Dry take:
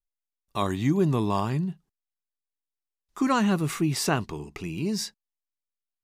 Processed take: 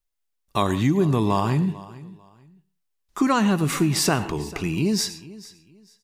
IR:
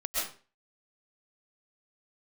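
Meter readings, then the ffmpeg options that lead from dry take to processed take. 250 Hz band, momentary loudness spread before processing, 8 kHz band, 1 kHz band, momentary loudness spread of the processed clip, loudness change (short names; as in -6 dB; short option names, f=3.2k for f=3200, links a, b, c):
+4.0 dB, 12 LU, +6.5 dB, +4.0 dB, 18 LU, +4.5 dB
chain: -filter_complex "[0:a]asplit=2[a][b];[1:a]atrim=start_sample=2205,asetrate=61740,aresample=44100[c];[b][c]afir=irnorm=-1:irlink=0,volume=-17dB[d];[a][d]amix=inputs=2:normalize=0,acompressor=threshold=-25dB:ratio=2.5,aecho=1:1:445|890:0.112|0.0281,volume=7dB"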